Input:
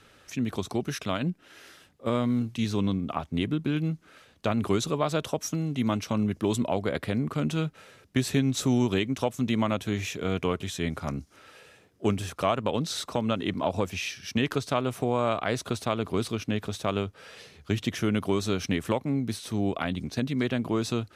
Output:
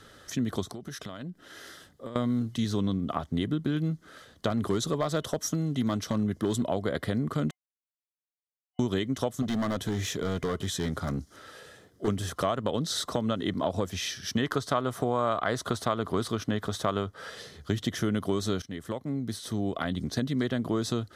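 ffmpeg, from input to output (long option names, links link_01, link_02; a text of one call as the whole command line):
ffmpeg -i in.wav -filter_complex "[0:a]asettb=1/sr,asplit=3[link_01][link_02][link_03];[link_01]atrim=end=0.644[link_04];[link_02]atrim=start=0.64:end=2.16,asetpts=PTS-STARTPTS,afade=type=in:duration=0.004:curve=qsin,afade=type=out:start_time=1.516:duration=0.004:curve=qsin,acompressor=threshold=-39dB:ratio=10:attack=3.2:release=140:knee=1:detection=peak[link_05];[link_03]atrim=start=2.156[link_06];[link_04][link_05]acrossfade=duration=0.004:curve1=hsin:curve2=qsin[link_07];[link_07][link_06]acrossfade=duration=0.004:curve1=qsin:curve2=hsin,asettb=1/sr,asplit=3[link_08][link_09][link_10];[link_08]atrim=end=4.504[link_11];[link_09]atrim=start=4.5:end=6.66,asetpts=PTS-STARTPTS,afade=type=in:duration=0.004:curve=qsin,afade=type=out:start_time=2.156:duration=0.004:curve=qsin,asoftclip=type=hard:threshold=-18dB[link_12];[link_10]atrim=start=6.656[link_13];[link_11][link_12]acrossfade=duration=0.004:curve1=hsin:curve2=qsin[link_14];[link_14][link_13]acrossfade=duration=0.004:curve1=qsin:curve2=hsin,asettb=1/sr,asplit=3[link_15][link_16][link_17];[link_15]atrim=end=9.424[link_18];[link_16]atrim=start=9.42:end=12.08,asetpts=PTS-STARTPTS,afade=type=in:duration=0.004:curve=qsin,afade=type=out:start_time=2.656:duration=0.004:curve=qsin,volume=26.5dB,asoftclip=hard,volume=-26.5dB[link_19];[link_17]atrim=start=12.076[link_20];[link_18][link_19]acrossfade=duration=0.004:curve1=hsin:curve2=qsin[link_21];[link_21][link_20]acrossfade=duration=0.004:curve1=qsin:curve2=hsin,asettb=1/sr,asplit=3[link_22][link_23][link_24];[link_22]atrim=end=14.384[link_25];[link_23]atrim=start=14.38:end=17.3,asetpts=PTS-STARTPTS,afade=type=in:duration=0.004:curve=qsin,afade=type=out:start_time=2.916:duration=0.004:curve=qsin,equalizer=frequency=1100:width=0.95:gain=6[link_26];[link_24]atrim=start=17.296[link_27];[link_25][link_26]acrossfade=duration=0.004:curve1=hsin:curve2=qsin[link_28];[link_28][link_27]acrossfade=duration=0.004:curve1=qsin:curve2=hsin,asplit=4[link_29][link_30][link_31][link_32];[link_29]atrim=end=7.51,asetpts=PTS-STARTPTS,afade=type=out:start_time=7.506:duration=0.004:curve=hsin[link_33];[link_30]atrim=start=7.51:end=8.79,asetpts=PTS-STARTPTS,volume=0[link_34];[link_31]atrim=start=8.79:end=18.62,asetpts=PTS-STARTPTS,afade=type=in:duration=0.004:curve=hsin,afade=type=out:start_time=9.826:duration=0.004:curve=hsin:silence=0.133352[link_35];[link_32]atrim=start=18.62,asetpts=PTS-STARTPTS,afade=type=in:duration=1.51:silence=0.133352[link_36];[link_33][link_34][link_35][link_36]concat=n=4:v=0:a=1,superequalizer=9b=0.708:12b=0.316,acompressor=threshold=-33dB:ratio=2,volume=4.5dB" out.wav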